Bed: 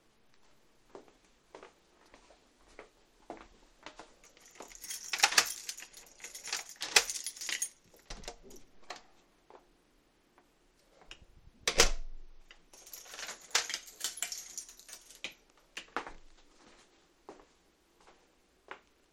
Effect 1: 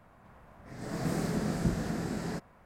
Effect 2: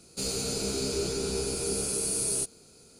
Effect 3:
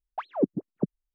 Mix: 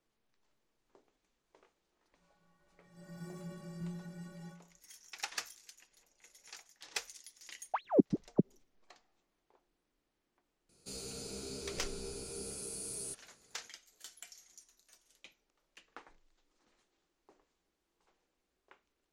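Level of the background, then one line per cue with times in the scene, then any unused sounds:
bed -14.5 dB
2.15 add 1 -1.5 dB + metallic resonator 170 Hz, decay 0.6 s, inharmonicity 0.03
7.56 add 3 -1.5 dB
10.69 add 2 -13.5 dB

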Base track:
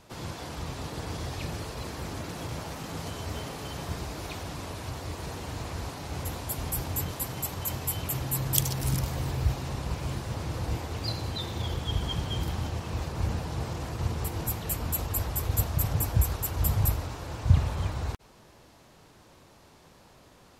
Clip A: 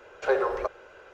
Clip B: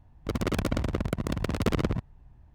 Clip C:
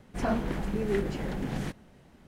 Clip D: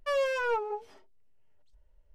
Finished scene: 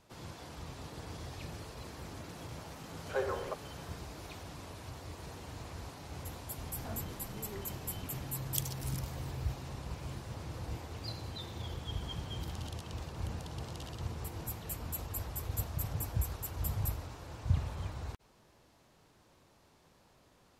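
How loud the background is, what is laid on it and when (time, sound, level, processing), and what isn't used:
base track -9.5 dB
2.87 add A -10 dB
6.61 add C -17.5 dB
12.14 add B -10.5 dB + brick-wall FIR band-pass 2700–13000 Hz
not used: D

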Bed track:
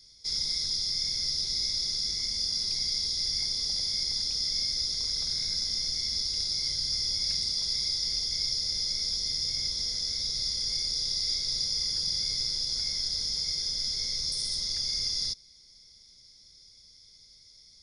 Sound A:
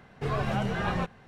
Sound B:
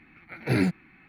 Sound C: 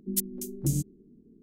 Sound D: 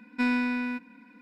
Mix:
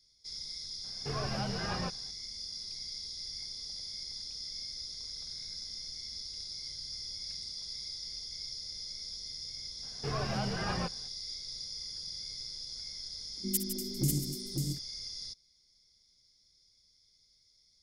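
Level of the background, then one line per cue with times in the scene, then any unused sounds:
bed track -12 dB
0.84 add A -7 dB
9.82 add A -5.5 dB, fades 0.02 s
13.37 add C -3.5 dB + tapped delay 62/158/543/680 ms -12/-9/-4/-15 dB
not used: B, D

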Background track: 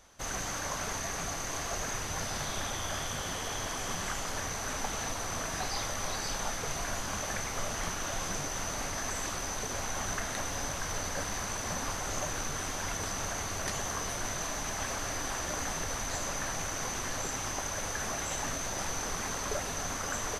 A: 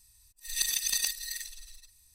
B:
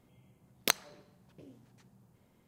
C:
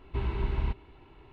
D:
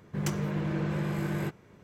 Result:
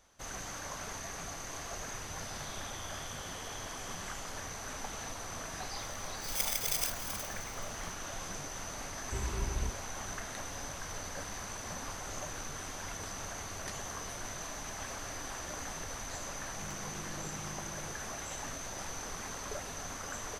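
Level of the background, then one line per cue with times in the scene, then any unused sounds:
background track -6.5 dB
5.79 add A -4 dB + FFT order left unsorted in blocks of 32 samples
8.98 add C -6 dB + vibrato 9.6 Hz 34 cents
16.44 add D -17 dB
not used: B

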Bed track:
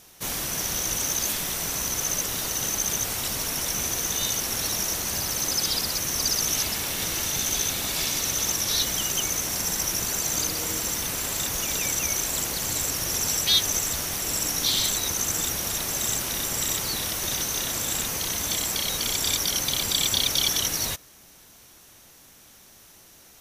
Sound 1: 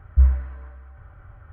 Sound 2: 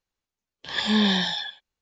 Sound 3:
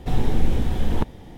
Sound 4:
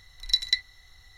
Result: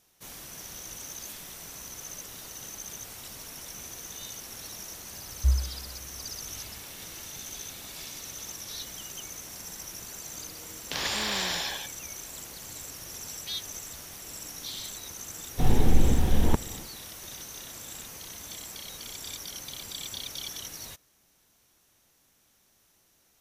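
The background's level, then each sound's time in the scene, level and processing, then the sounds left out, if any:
bed track -14.5 dB
5.27 add 1 -8 dB
10.27 add 2 -4.5 dB + spectral compressor 4:1
15.52 add 3 -0.5 dB, fades 0.10 s
not used: 4

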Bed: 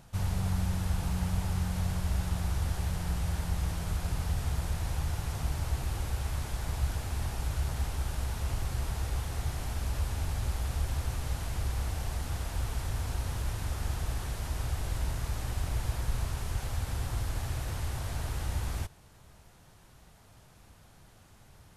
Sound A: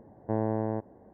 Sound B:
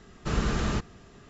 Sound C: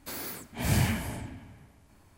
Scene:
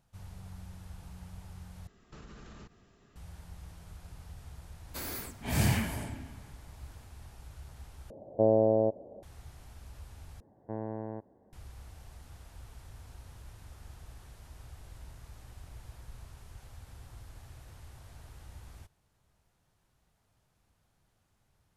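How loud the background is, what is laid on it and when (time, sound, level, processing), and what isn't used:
bed -16.5 dB
1.87 replace with B -11.5 dB + compressor 10:1, threshold -34 dBFS
4.88 add C -1.5 dB
8.1 replace with A -1.5 dB + synth low-pass 590 Hz, resonance Q 5
10.4 replace with A -9 dB

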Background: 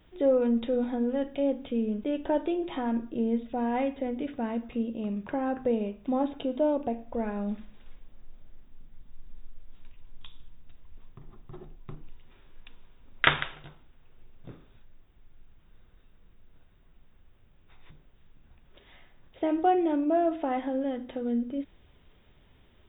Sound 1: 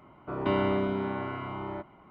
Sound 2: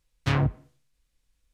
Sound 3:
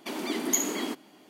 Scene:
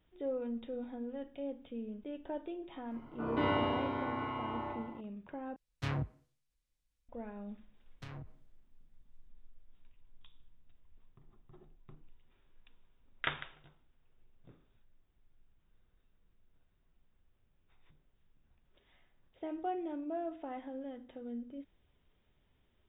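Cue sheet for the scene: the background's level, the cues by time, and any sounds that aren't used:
background -13.5 dB
2.91 add 1 -9.5 dB + FDN reverb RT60 1 s, low-frequency decay 1.45×, high-frequency decay 1×, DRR -7 dB
5.56 replace with 2 -12 dB
7.76 add 2 -16.5 dB + compressor 5:1, threshold -27 dBFS
not used: 3

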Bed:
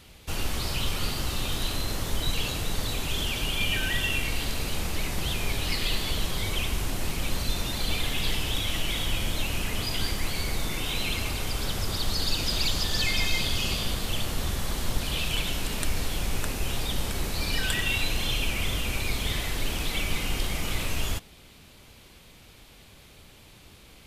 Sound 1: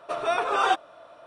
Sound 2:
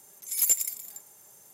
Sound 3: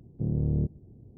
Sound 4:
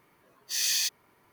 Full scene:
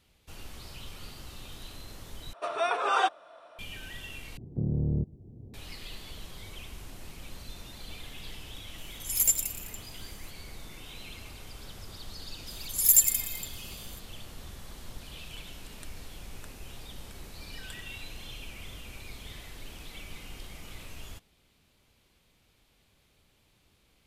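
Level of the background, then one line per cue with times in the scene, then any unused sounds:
bed -15.5 dB
2.33 replace with 1 -2 dB + HPF 450 Hz 6 dB/oct
4.37 replace with 3 -1.5 dB + three-band squash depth 40%
8.78 add 2 -1 dB
12.47 add 2 -4 dB + high shelf 5400 Hz +10 dB
not used: 4

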